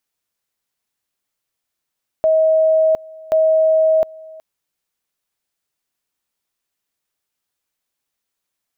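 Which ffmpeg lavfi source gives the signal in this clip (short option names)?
-f lavfi -i "aevalsrc='pow(10,(-10.5-23.5*gte(mod(t,1.08),0.71))/20)*sin(2*PI*636*t)':d=2.16:s=44100"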